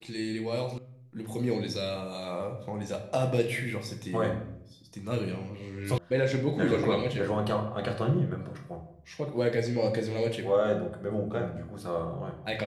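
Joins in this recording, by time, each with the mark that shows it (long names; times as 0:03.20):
0:00.78: cut off before it has died away
0:05.98: cut off before it has died away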